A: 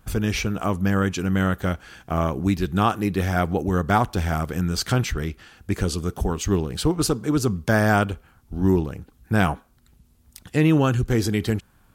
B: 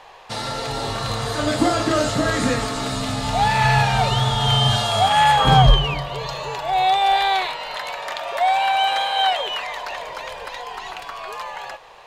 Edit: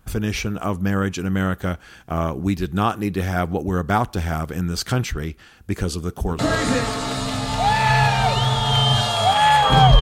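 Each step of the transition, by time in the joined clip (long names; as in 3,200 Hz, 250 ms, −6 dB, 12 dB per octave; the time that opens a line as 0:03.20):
A
0:06.03–0:06.39: delay throw 230 ms, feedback 55%, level −9 dB
0:06.39: continue with B from 0:02.14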